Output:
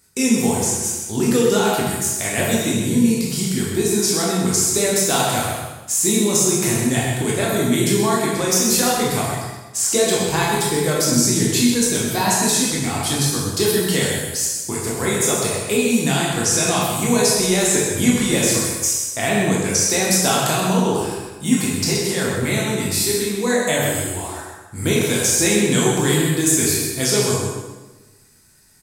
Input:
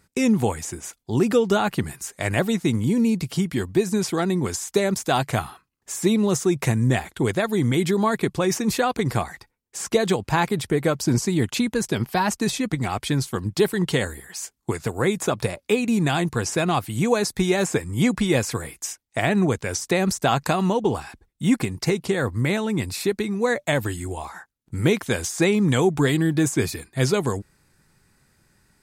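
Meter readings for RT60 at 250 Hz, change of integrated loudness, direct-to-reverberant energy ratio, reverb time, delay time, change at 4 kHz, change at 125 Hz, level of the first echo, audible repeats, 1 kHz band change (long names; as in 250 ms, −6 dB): 1.3 s, +5.0 dB, −5.5 dB, 1.2 s, 129 ms, +9.0 dB, +1.0 dB, −6.0 dB, 1, +3.0 dB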